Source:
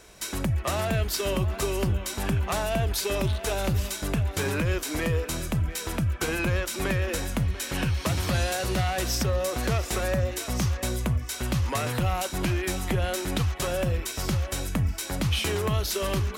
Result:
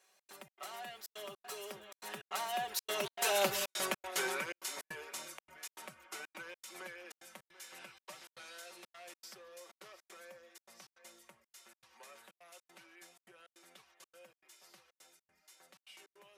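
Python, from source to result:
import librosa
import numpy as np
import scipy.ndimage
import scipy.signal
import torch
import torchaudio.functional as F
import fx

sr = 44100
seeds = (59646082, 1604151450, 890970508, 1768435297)

y = fx.doppler_pass(x, sr, speed_mps=23, closest_m=8.2, pass_at_s=3.56)
y = scipy.signal.sosfilt(scipy.signal.butter(2, 590.0, 'highpass', fs=sr, output='sos'), y)
y = y + 0.68 * np.pad(y, (int(5.3 * sr / 1000.0), 0))[:len(y)]
y = fx.step_gate(y, sr, bpm=156, pattern='xx.xx.xxx', floor_db=-60.0, edge_ms=4.5)
y = y * librosa.db_to_amplitude(1.0)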